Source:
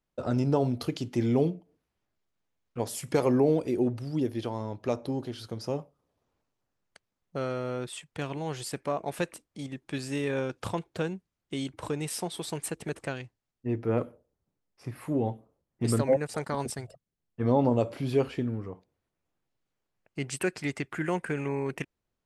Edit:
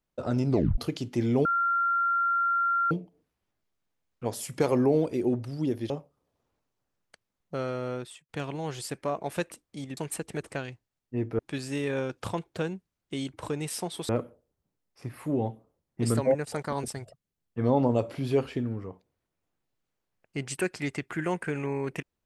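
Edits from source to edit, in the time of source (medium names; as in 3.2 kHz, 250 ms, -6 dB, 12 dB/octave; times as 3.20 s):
0.49 s: tape stop 0.29 s
1.45 s: add tone 1.38 kHz -22.5 dBFS 1.46 s
4.44–5.72 s: delete
7.76–8.11 s: fade out
12.49–13.91 s: move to 9.79 s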